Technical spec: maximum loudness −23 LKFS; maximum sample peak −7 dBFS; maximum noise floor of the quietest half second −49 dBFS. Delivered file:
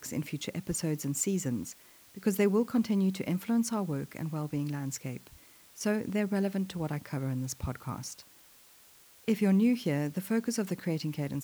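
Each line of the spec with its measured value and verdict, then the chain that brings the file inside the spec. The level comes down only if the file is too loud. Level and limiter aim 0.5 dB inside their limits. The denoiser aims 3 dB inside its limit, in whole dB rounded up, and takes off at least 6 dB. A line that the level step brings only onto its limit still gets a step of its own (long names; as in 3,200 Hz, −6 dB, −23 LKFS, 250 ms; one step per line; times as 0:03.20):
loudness −31.5 LKFS: in spec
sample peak −16.5 dBFS: in spec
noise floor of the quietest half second −58 dBFS: in spec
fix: no processing needed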